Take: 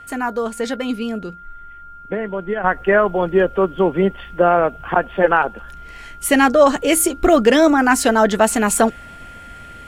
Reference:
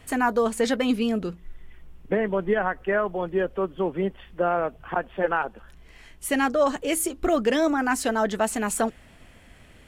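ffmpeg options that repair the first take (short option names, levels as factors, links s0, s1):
-af "bandreject=f=1400:w=30,asetnsamples=n=441:p=0,asendcmd='2.64 volume volume -9.5dB',volume=1"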